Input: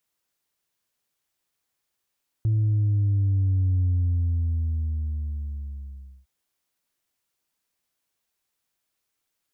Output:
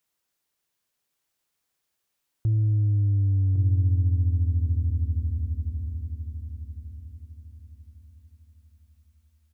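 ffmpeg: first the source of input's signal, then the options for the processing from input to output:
-f lavfi -i "aevalsrc='0.112*clip((3.81-t)/2.44,0,1)*tanh(1.12*sin(2*PI*110*3.81/log(65/110)*(exp(log(65/110)*t/3.81)-1)))/tanh(1.12)':d=3.81:s=44100"
-filter_complex "[0:a]asplit=2[a][b];[b]aecho=0:1:1105|2210|3315|4420:0.447|0.143|0.0457|0.0146[c];[a][c]amix=inputs=2:normalize=0"

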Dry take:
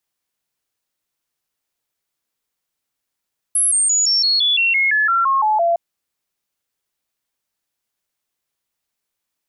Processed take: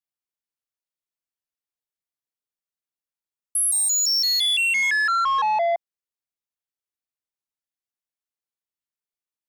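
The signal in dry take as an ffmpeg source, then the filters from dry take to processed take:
-f lavfi -i "aevalsrc='0.224*clip(min(mod(t,0.17),0.17-mod(t,0.17))/0.005,0,1)*sin(2*PI*10900*pow(2,-floor(t/0.17)/3)*mod(t,0.17))':d=2.21:s=44100"
-af "afwtdn=0.0501,asoftclip=type=tanh:threshold=-18.5dB"

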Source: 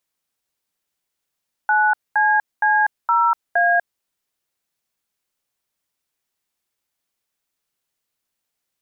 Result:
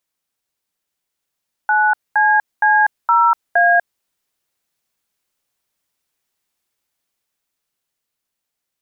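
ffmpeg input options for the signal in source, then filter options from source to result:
-f lavfi -i "aevalsrc='0.158*clip(min(mod(t,0.466),0.244-mod(t,0.466))/0.002,0,1)*(eq(floor(t/0.466),0)*(sin(2*PI*852*mod(t,0.466))+sin(2*PI*1477*mod(t,0.466)))+eq(floor(t/0.466),1)*(sin(2*PI*852*mod(t,0.466))+sin(2*PI*1633*mod(t,0.466)))+eq(floor(t/0.466),2)*(sin(2*PI*852*mod(t,0.466))+sin(2*PI*1633*mod(t,0.466)))+eq(floor(t/0.466),3)*(sin(2*PI*941*mod(t,0.466))+sin(2*PI*1336*mod(t,0.466)))+eq(floor(t/0.466),4)*(sin(2*PI*697*mod(t,0.466))+sin(2*PI*1633*mod(t,0.466))))':d=2.33:s=44100"
-af "dynaudnorm=f=220:g=17:m=4dB"

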